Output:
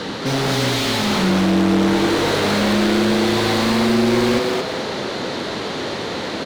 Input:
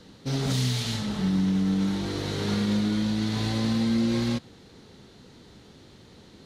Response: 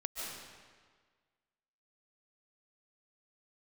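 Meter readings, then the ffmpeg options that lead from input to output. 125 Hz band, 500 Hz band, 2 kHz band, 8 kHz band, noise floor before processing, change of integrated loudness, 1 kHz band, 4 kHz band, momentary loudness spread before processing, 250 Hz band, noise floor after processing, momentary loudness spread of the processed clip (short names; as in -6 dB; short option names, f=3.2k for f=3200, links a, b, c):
+4.0 dB, +16.5 dB, +16.5 dB, +10.5 dB, -52 dBFS, +8.0 dB, +17.5 dB, +12.0 dB, 5 LU, +7.5 dB, -26 dBFS, 9 LU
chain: -filter_complex "[0:a]asplit=2[a][b];[b]highpass=f=720:p=1,volume=36dB,asoftclip=type=tanh:threshold=-15dB[c];[a][c]amix=inputs=2:normalize=0,lowpass=f=1.8k:p=1,volume=-6dB,asplit=5[d][e][f][g][h];[e]adelay=221,afreqshift=140,volume=-3dB[i];[f]adelay=442,afreqshift=280,volume=-12.9dB[j];[g]adelay=663,afreqshift=420,volume=-22.8dB[k];[h]adelay=884,afreqshift=560,volume=-32.7dB[l];[d][i][j][k][l]amix=inputs=5:normalize=0,volume=3.5dB"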